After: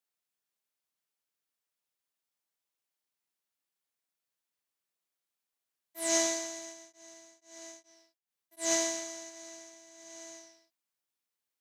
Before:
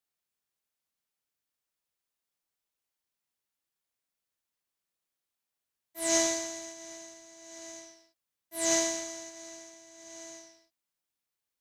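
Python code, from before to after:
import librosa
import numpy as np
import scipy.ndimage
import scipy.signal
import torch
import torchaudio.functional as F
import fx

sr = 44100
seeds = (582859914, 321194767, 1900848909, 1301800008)

y = fx.highpass(x, sr, hz=190.0, slope=6)
y = fx.tremolo_abs(y, sr, hz=fx.line((6.62, 1.8), (8.78, 3.2)), at=(6.62, 8.78), fade=0.02)
y = y * 10.0 ** (-1.5 / 20.0)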